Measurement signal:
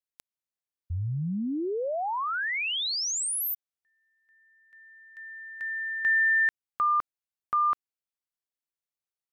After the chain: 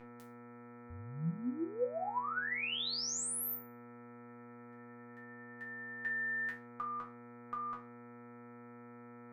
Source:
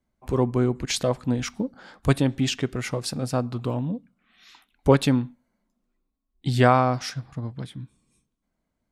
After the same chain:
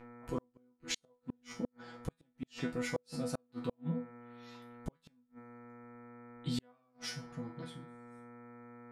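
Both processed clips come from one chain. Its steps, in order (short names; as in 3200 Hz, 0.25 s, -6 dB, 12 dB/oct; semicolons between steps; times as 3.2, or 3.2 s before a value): buzz 120 Hz, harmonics 20, -43 dBFS -4 dB/oct; resonator bank E3 fifth, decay 0.29 s; flipped gate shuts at -30 dBFS, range -42 dB; gain +6 dB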